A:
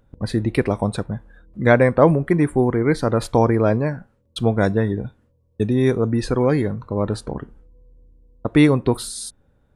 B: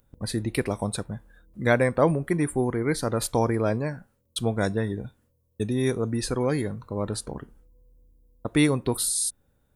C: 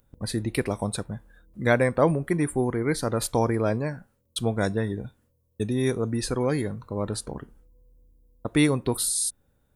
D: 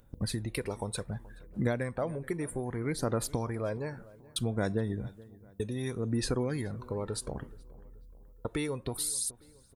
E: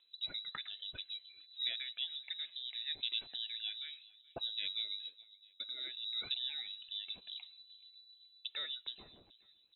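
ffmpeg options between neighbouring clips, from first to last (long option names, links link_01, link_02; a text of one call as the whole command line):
ffmpeg -i in.wav -af "aemphasis=mode=production:type=75fm,volume=-6.5dB" out.wav
ffmpeg -i in.wav -af anull out.wav
ffmpeg -i in.wav -filter_complex "[0:a]acompressor=threshold=-32dB:ratio=4,aphaser=in_gain=1:out_gain=1:delay=2.3:decay=0.42:speed=0.64:type=sinusoidal,asplit=2[link_01][link_02];[link_02]adelay=427,lowpass=frequency=2100:poles=1,volume=-20.5dB,asplit=2[link_03][link_04];[link_04]adelay=427,lowpass=frequency=2100:poles=1,volume=0.47,asplit=2[link_05][link_06];[link_06]adelay=427,lowpass=frequency=2100:poles=1,volume=0.47[link_07];[link_01][link_03][link_05][link_07]amix=inputs=4:normalize=0" out.wav
ffmpeg -i in.wav -filter_complex "[0:a]highshelf=frequency=2800:gain=7.5,acrossover=split=1400[link_01][link_02];[link_01]aeval=exprs='val(0)*(1-0.5/2+0.5/2*cos(2*PI*7.9*n/s))':channel_layout=same[link_03];[link_02]aeval=exprs='val(0)*(1-0.5/2-0.5/2*cos(2*PI*7.9*n/s))':channel_layout=same[link_04];[link_03][link_04]amix=inputs=2:normalize=0,lowpass=frequency=3400:width_type=q:width=0.5098,lowpass=frequency=3400:width_type=q:width=0.6013,lowpass=frequency=3400:width_type=q:width=0.9,lowpass=frequency=3400:width_type=q:width=2.563,afreqshift=-4000,volume=-7dB" out.wav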